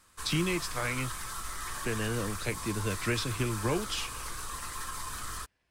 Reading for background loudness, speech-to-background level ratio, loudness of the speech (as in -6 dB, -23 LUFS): -38.0 LUFS, 4.5 dB, -33.5 LUFS